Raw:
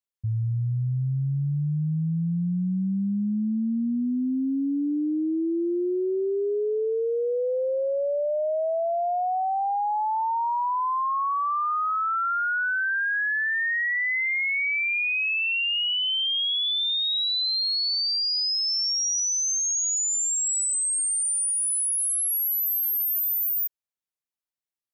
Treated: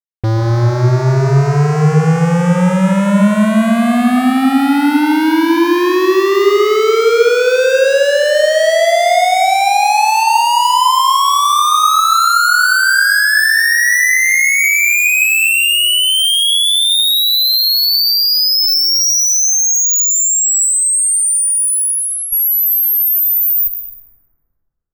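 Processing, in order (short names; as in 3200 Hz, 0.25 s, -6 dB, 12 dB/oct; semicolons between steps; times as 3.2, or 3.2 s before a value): 19.83–22.32 LPF 8400 Hz -> 3600 Hz 12 dB/oct; fuzz box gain 44 dB, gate -52 dBFS; plate-style reverb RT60 2.1 s, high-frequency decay 0.35×, pre-delay 0.105 s, DRR 4 dB; gain +1 dB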